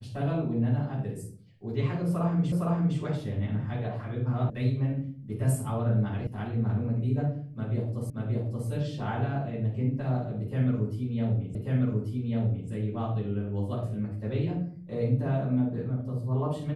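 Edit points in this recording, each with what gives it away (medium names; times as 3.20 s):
2.52 s: repeat of the last 0.46 s
4.50 s: sound stops dead
6.27 s: sound stops dead
8.10 s: repeat of the last 0.58 s
11.55 s: repeat of the last 1.14 s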